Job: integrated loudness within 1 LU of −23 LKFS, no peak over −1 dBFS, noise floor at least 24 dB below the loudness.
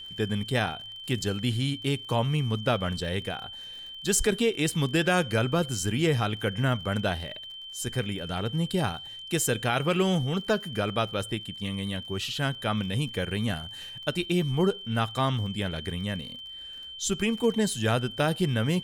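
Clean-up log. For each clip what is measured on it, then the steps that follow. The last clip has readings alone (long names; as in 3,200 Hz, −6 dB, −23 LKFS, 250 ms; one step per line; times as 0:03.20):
crackle rate 45 per second; interfering tone 3,100 Hz; level of the tone −39 dBFS; integrated loudness −28.0 LKFS; sample peak −11.5 dBFS; target loudness −23.0 LKFS
→ click removal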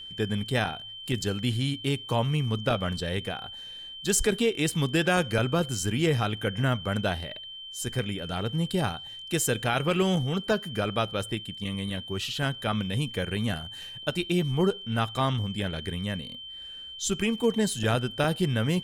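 crackle rate 0.27 per second; interfering tone 3,100 Hz; level of the tone −39 dBFS
→ notch filter 3,100 Hz, Q 30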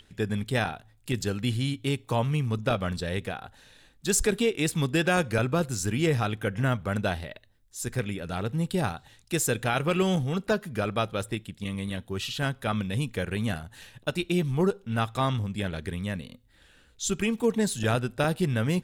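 interfering tone none found; integrated loudness −28.5 LKFS; sample peak −11.5 dBFS; target loudness −23.0 LKFS
→ level +5.5 dB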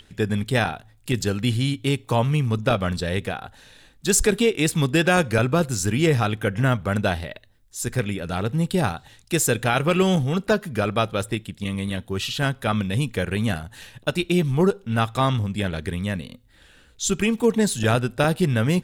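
integrated loudness −23.0 LKFS; sample peak −6.0 dBFS; background noise floor −55 dBFS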